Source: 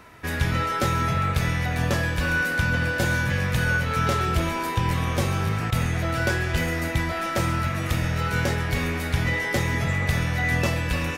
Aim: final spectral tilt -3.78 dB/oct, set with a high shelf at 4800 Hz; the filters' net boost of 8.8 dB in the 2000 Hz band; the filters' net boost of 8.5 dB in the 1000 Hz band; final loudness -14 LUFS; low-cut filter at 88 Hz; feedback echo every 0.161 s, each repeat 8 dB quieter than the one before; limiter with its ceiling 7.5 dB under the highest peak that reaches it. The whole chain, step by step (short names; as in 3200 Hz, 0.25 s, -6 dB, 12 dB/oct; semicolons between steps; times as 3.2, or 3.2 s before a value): HPF 88 Hz; bell 1000 Hz +8 dB; bell 2000 Hz +7 dB; high shelf 4800 Hz +9 dB; limiter -11 dBFS; feedback echo 0.161 s, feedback 40%, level -8 dB; gain +4 dB